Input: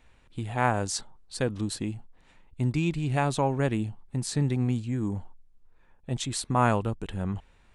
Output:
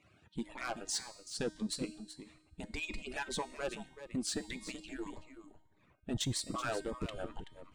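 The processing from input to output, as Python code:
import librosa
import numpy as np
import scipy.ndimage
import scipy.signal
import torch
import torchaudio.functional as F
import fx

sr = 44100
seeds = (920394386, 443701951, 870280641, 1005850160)

p1 = fx.hpss_only(x, sr, part='percussive')
p2 = fx.high_shelf(p1, sr, hz=9600.0, db=-11.5)
p3 = fx.rider(p2, sr, range_db=5, speed_s=0.5)
p4 = p2 + F.gain(torch.from_numpy(p3), 2.5).numpy()
p5 = fx.transient(p4, sr, attack_db=-3, sustain_db=-7)
p6 = 10.0 ** (-21.5 / 20.0) * np.tanh(p5 / 10.0 ** (-21.5 / 20.0))
p7 = fx.comb_fb(p6, sr, f0_hz=310.0, decay_s=1.1, harmonics='all', damping=0.0, mix_pct=70)
p8 = p7 + fx.echo_single(p7, sr, ms=379, db=-12.0, dry=0)
p9 = fx.notch_cascade(p8, sr, direction='rising', hz=1.7)
y = F.gain(torch.from_numpy(p9), 4.5).numpy()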